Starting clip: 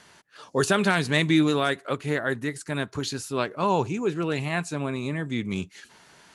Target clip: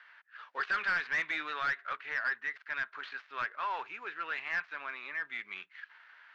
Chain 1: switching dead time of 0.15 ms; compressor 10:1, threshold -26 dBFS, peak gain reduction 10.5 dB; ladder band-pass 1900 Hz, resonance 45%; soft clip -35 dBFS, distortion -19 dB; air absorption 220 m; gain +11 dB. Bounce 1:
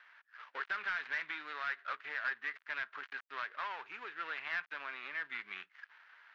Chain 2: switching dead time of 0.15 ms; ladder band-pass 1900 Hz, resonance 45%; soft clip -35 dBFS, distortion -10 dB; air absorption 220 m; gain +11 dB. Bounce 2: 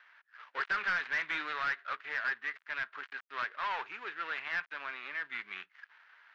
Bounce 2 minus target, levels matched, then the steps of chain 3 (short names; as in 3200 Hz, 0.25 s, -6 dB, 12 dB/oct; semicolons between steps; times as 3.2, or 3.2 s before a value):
switching dead time: distortion +7 dB
switching dead time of 0.059 ms; ladder band-pass 1900 Hz, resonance 45%; soft clip -35 dBFS, distortion -8 dB; air absorption 220 m; gain +11 dB